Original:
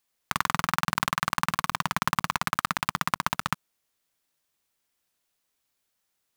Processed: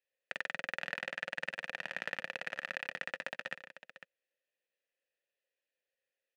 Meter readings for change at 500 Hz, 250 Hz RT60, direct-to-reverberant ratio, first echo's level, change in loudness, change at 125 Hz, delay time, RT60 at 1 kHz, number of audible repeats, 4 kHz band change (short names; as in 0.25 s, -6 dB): -3.5 dB, none, none, -16.0 dB, -11.5 dB, -25.5 dB, 0.146 s, none, 2, -12.5 dB